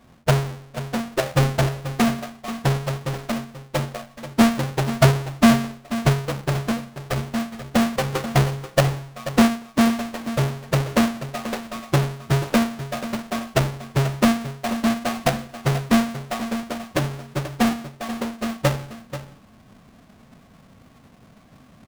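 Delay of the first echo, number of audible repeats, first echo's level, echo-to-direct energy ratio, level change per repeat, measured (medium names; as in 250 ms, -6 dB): 485 ms, 1, -12.5 dB, -12.5 dB, no regular repeats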